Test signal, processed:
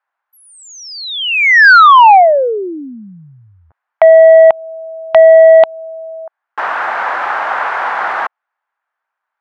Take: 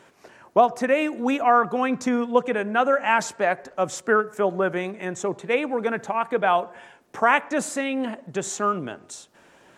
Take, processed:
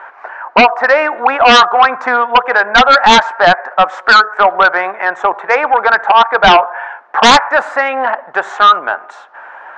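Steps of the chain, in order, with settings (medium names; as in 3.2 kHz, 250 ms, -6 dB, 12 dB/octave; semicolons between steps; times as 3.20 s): Chebyshev band-pass 790–1600 Hz, order 2; in parallel at -2 dB: compression, threshold -33 dBFS; on the sum: sine folder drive 10 dB, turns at -8 dBFS; trim +6.5 dB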